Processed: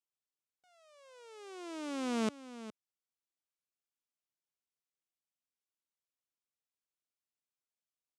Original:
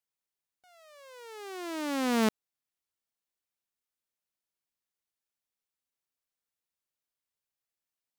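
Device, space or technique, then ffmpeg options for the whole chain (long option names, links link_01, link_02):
car door speaker: -af "highpass=100,equalizer=frequency=830:width_type=q:width=4:gain=-4,equalizer=frequency=1800:width_type=q:width=4:gain=-7,equalizer=frequency=4300:width_type=q:width=4:gain=-3,lowpass=frequency=9400:width=0.5412,lowpass=frequency=9400:width=1.3066,aecho=1:1:413:0.2,volume=-6.5dB"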